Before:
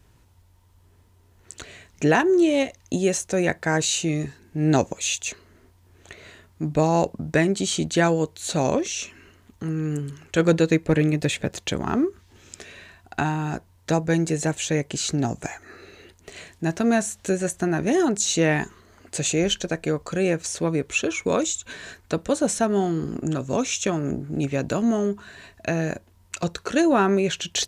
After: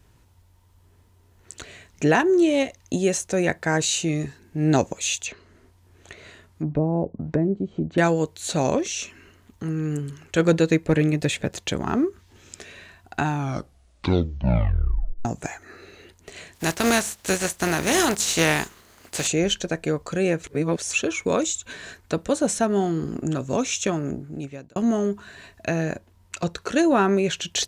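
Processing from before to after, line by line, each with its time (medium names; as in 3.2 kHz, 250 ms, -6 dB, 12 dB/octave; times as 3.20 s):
5.25–7.98 s: low-pass that closes with the level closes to 450 Hz, closed at -20.5 dBFS
13.25 s: tape stop 2.00 s
16.54–19.26 s: spectral contrast reduction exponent 0.53
20.44–20.93 s: reverse
23.91–24.76 s: fade out
25.83–26.62 s: treble shelf 6.1 kHz -4.5 dB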